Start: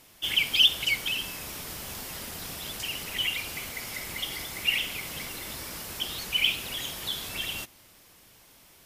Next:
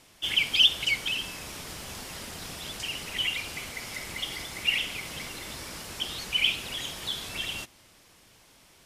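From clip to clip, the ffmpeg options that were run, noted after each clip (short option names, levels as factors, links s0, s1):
-af "lowpass=9700"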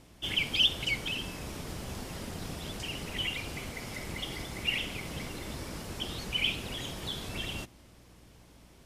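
-af "tiltshelf=f=760:g=6,aeval=exprs='val(0)+0.00112*(sin(2*PI*60*n/s)+sin(2*PI*2*60*n/s)/2+sin(2*PI*3*60*n/s)/3+sin(2*PI*4*60*n/s)/4+sin(2*PI*5*60*n/s)/5)':c=same"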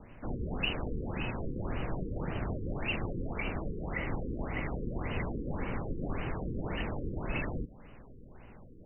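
-af "afreqshift=-66,afftfilt=real='re*lt(b*sr/1024,500*pow(3100/500,0.5+0.5*sin(2*PI*1.8*pts/sr)))':imag='im*lt(b*sr/1024,500*pow(3100/500,0.5+0.5*sin(2*PI*1.8*pts/sr)))':win_size=1024:overlap=0.75,volume=2"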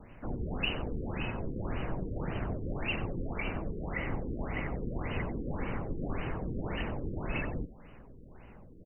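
-af "aecho=1:1:92:0.158"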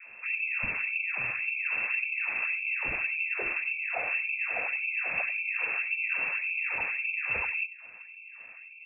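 -af "lowpass=f=2300:t=q:w=0.5098,lowpass=f=2300:t=q:w=0.6013,lowpass=f=2300:t=q:w=0.9,lowpass=f=2300:t=q:w=2.563,afreqshift=-2700,volume=1.41"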